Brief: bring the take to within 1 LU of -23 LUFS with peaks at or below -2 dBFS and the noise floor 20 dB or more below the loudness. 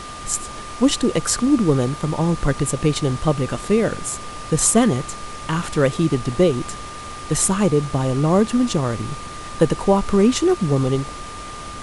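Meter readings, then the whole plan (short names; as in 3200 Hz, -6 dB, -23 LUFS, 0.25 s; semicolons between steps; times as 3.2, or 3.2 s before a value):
steady tone 1200 Hz; tone level -34 dBFS; noise floor -34 dBFS; noise floor target -40 dBFS; loudness -19.5 LUFS; peak -2.5 dBFS; loudness target -23.0 LUFS
-> notch 1200 Hz, Q 30; noise print and reduce 6 dB; gain -3.5 dB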